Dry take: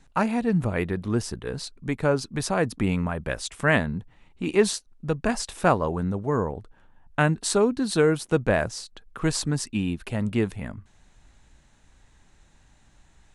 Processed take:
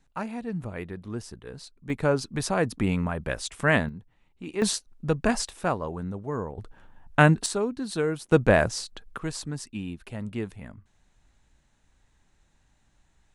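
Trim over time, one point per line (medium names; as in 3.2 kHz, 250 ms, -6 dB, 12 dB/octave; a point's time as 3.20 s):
-9.5 dB
from 1.90 s -1 dB
from 3.89 s -10 dB
from 4.62 s +1 dB
from 5.49 s -6.5 dB
from 6.58 s +4 dB
from 7.46 s -6.5 dB
from 8.32 s +3 dB
from 9.18 s -8 dB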